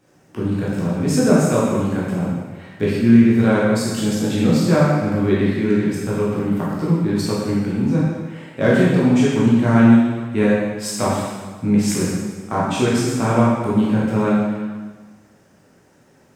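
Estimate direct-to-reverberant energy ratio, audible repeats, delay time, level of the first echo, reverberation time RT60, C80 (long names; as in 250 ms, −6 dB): −7.5 dB, no echo audible, no echo audible, no echo audible, 1.4 s, 1.0 dB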